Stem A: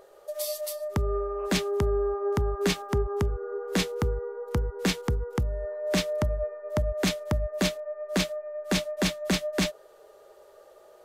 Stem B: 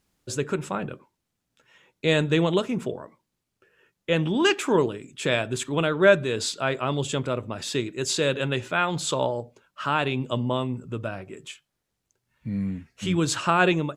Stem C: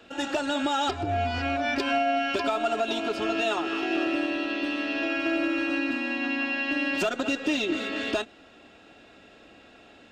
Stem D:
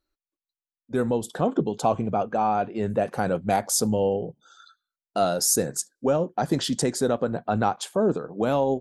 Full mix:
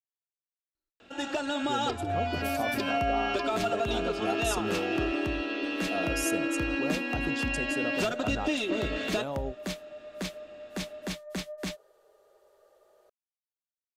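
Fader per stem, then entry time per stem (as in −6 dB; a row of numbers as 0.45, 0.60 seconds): −9.5 dB, muted, −3.5 dB, −12.5 dB; 2.05 s, muted, 1.00 s, 0.75 s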